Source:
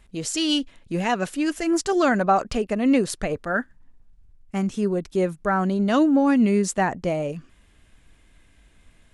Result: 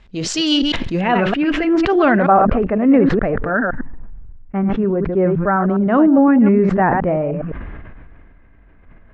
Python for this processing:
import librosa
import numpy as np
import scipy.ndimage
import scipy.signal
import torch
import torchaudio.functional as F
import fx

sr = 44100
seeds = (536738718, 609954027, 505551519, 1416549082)

y = fx.reverse_delay(x, sr, ms=103, wet_db=-10)
y = fx.lowpass(y, sr, hz=fx.steps((0.0, 5300.0), (1.01, 2900.0), (2.28, 1800.0)), slope=24)
y = fx.sustainer(y, sr, db_per_s=24.0)
y = y * librosa.db_to_amplitude(5.5)